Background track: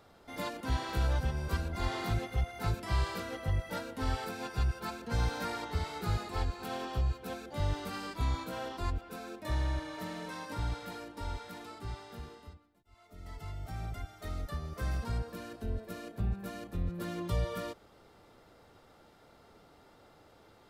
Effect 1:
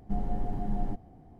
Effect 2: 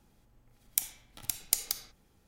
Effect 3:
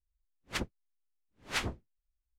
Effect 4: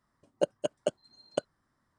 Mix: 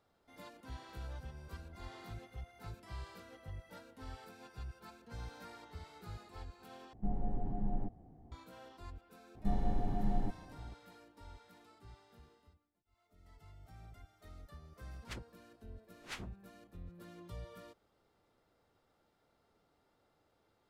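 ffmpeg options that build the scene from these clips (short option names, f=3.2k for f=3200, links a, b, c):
-filter_complex "[1:a]asplit=2[a][b];[0:a]volume=-15.5dB[c];[a]lowpass=f=1k:p=1[d];[c]asplit=2[e][f];[e]atrim=end=6.934[g];[d]atrim=end=1.39,asetpts=PTS-STARTPTS,volume=-5dB[h];[f]atrim=start=8.316[i];[b]atrim=end=1.39,asetpts=PTS-STARTPTS,volume=-2.5dB,afade=t=in:d=0.004:c=hsin,afade=t=out:st=1.386:d=0.004:c=hsin,adelay=9350[j];[3:a]atrim=end=2.37,asetpts=PTS-STARTPTS,volume=-12.5dB,afade=t=in:d=0.004:c=hsin,afade=t=out:st=2.366:d=0.004:c=hsin,adelay=14560[k];[g][h]acrossfade=d=0.004:c1=hsin:c2=hsin[l];[l][i]acrossfade=d=0.004:c1=hsin:c2=hsin[m];[m][j][k]amix=inputs=3:normalize=0"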